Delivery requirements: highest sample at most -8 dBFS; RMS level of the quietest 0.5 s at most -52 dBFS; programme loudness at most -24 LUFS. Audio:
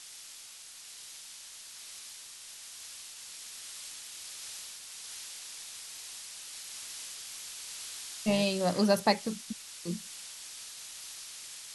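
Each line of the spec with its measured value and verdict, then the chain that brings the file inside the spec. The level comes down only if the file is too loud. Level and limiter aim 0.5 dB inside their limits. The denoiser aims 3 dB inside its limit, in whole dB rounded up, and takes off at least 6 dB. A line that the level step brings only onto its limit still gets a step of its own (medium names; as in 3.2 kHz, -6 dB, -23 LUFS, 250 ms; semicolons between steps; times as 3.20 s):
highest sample -12.0 dBFS: pass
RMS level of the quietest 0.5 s -49 dBFS: fail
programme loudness -36.5 LUFS: pass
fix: noise reduction 6 dB, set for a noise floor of -49 dBFS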